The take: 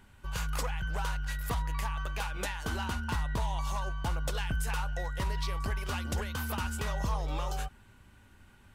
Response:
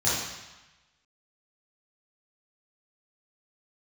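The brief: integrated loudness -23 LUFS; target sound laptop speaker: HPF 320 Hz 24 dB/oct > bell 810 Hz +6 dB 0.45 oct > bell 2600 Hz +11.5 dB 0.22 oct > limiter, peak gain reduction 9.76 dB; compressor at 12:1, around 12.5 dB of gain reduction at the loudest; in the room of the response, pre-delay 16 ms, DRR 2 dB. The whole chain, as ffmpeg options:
-filter_complex "[0:a]acompressor=threshold=-40dB:ratio=12,asplit=2[a][b];[1:a]atrim=start_sample=2205,adelay=16[c];[b][c]afir=irnorm=-1:irlink=0,volume=-15dB[d];[a][d]amix=inputs=2:normalize=0,highpass=f=320:w=0.5412,highpass=f=320:w=1.3066,equalizer=f=810:t=o:w=0.45:g=6,equalizer=f=2.6k:t=o:w=0.22:g=11.5,volume=24.5dB,alimiter=limit=-14dB:level=0:latency=1"

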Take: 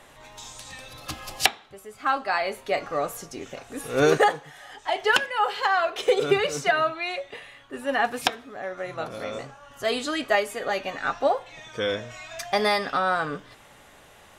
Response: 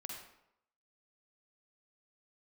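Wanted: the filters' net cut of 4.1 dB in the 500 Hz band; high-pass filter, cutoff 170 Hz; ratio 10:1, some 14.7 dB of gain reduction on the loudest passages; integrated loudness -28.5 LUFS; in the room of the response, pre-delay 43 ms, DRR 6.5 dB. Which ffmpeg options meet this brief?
-filter_complex "[0:a]highpass=170,equalizer=f=500:t=o:g=-5,acompressor=threshold=-31dB:ratio=10,asplit=2[a][b];[1:a]atrim=start_sample=2205,adelay=43[c];[b][c]afir=irnorm=-1:irlink=0,volume=-4dB[d];[a][d]amix=inputs=2:normalize=0,volume=7dB"

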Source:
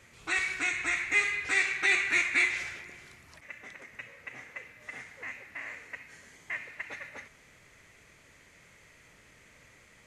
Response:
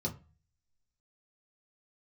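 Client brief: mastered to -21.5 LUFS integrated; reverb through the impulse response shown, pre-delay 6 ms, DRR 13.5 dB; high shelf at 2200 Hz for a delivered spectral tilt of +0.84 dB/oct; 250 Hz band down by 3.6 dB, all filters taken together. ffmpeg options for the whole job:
-filter_complex "[0:a]equalizer=f=250:t=o:g=-6,highshelf=f=2.2k:g=7.5,asplit=2[a][b];[1:a]atrim=start_sample=2205,adelay=6[c];[b][c]afir=irnorm=-1:irlink=0,volume=-16dB[d];[a][d]amix=inputs=2:normalize=0,volume=3.5dB"

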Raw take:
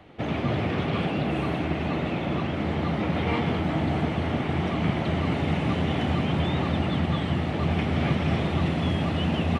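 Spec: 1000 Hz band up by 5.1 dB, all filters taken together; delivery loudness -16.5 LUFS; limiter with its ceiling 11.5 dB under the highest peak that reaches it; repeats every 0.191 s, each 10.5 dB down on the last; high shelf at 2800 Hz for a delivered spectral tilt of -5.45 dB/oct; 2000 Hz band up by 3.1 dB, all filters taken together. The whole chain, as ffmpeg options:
-af "equalizer=f=1k:t=o:g=6.5,equalizer=f=2k:t=o:g=3.5,highshelf=f=2.8k:g=-3.5,alimiter=limit=-21dB:level=0:latency=1,aecho=1:1:191|382|573:0.299|0.0896|0.0269,volume=12.5dB"

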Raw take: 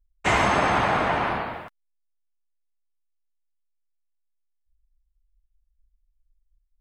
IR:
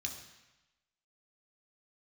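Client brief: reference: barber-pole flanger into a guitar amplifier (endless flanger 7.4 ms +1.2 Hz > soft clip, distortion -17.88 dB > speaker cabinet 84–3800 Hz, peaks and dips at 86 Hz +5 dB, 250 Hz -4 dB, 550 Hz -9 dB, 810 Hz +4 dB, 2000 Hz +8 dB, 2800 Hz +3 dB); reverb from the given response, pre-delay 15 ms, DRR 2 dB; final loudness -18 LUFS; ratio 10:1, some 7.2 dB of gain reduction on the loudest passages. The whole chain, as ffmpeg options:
-filter_complex "[0:a]acompressor=threshold=-24dB:ratio=10,asplit=2[a][b];[1:a]atrim=start_sample=2205,adelay=15[c];[b][c]afir=irnorm=-1:irlink=0,volume=-1.5dB[d];[a][d]amix=inputs=2:normalize=0,asplit=2[e][f];[f]adelay=7.4,afreqshift=1.2[g];[e][g]amix=inputs=2:normalize=1,asoftclip=threshold=-23dB,highpass=84,equalizer=f=86:t=q:w=4:g=5,equalizer=f=250:t=q:w=4:g=-4,equalizer=f=550:t=q:w=4:g=-9,equalizer=f=810:t=q:w=4:g=4,equalizer=f=2k:t=q:w=4:g=8,equalizer=f=2.8k:t=q:w=4:g=3,lowpass=f=3.8k:w=0.5412,lowpass=f=3.8k:w=1.3066,volume=11.5dB"

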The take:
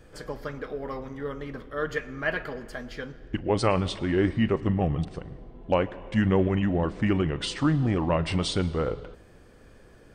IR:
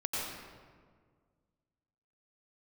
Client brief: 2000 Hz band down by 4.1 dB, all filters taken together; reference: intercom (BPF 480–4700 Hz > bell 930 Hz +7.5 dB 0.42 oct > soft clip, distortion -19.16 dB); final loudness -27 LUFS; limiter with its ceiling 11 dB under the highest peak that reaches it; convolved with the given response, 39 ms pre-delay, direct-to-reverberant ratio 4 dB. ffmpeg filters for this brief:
-filter_complex "[0:a]equalizer=f=2k:t=o:g=-5.5,alimiter=limit=-21dB:level=0:latency=1,asplit=2[a][b];[1:a]atrim=start_sample=2205,adelay=39[c];[b][c]afir=irnorm=-1:irlink=0,volume=-9.5dB[d];[a][d]amix=inputs=2:normalize=0,highpass=480,lowpass=4.7k,equalizer=f=930:t=o:w=0.42:g=7.5,asoftclip=threshold=-23dB,volume=9.5dB"

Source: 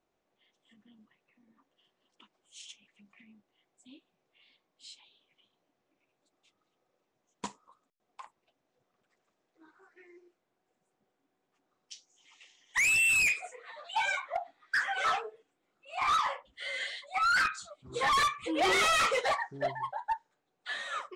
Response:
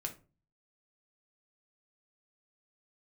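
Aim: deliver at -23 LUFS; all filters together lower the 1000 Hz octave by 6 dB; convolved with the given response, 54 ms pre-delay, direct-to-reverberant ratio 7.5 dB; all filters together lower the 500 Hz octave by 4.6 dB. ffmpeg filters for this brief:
-filter_complex "[0:a]equalizer=f=500:t=o:g=-3.5,equalizer=f=1k:t=o:g=-7.5,asplit=2[a][b];[1:a]atrim=start_sample=2205,adelay=54[c];[b][c]afir=irnorm=-1:irlink=0,volume=-7dB[d];[a][d]amix=inputs=2:normalize=0,volume=7.5dB"

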